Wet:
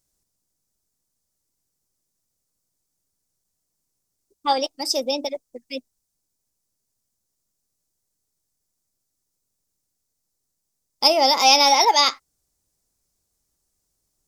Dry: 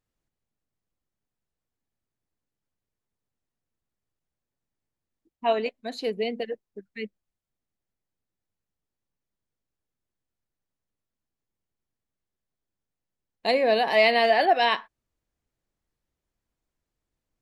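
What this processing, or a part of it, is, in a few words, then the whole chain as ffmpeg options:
nightcore: -af "highshelf=frequency=3300:width_type=q:width=1.5:gain=13,asetrate=53802,aresample=44100,volume=3.5dB"

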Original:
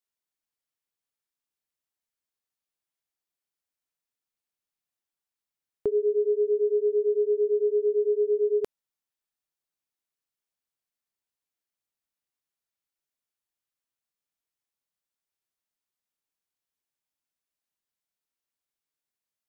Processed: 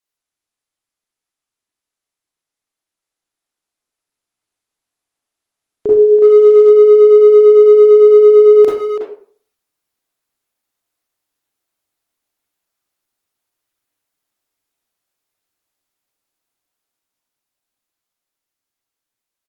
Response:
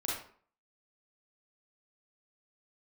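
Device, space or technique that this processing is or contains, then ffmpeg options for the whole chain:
speakerphone in a meeting room: -filter_complex "[1:a]atrim=start_sample=2205[link_01];[0:a][link_01]afir=irnorm=-1:irlink=0,asplit=2[link_02][link_03];[link_03]adelay=330,highpass=300,lowpass=3400,asoftclip=type=hard:threshold=-20.5dB,volume=-6dB[link_04];[link_02][link_04]amix=inputs=2:normalize=0,dynaudnorm=framelen=820:gausssize=11:maxgain=6dB,volume=4.5dB" -ar 48000 -c:a libopus -b:a 20k

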